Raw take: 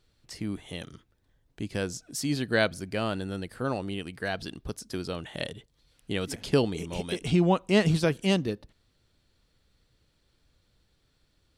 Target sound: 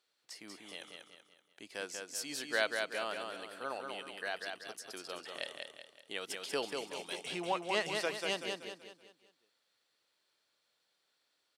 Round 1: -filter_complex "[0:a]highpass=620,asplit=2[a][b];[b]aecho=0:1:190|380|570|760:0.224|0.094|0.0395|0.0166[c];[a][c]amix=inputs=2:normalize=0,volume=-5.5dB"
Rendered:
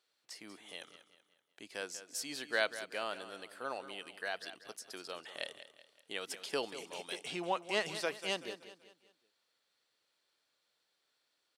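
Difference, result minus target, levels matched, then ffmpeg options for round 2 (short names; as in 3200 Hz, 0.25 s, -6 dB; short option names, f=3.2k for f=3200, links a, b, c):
echo-to-direct -8.5 dB
-filter_complex "[0:a]highpass=620,asplit=2[a][b];[b]aecho=0:1:190|380|570|760|950:0.596|0.25|0.105|0.0441|0.0185[c];[a][c]amix=inputs=2:normalize=0,volume=-5.5dB"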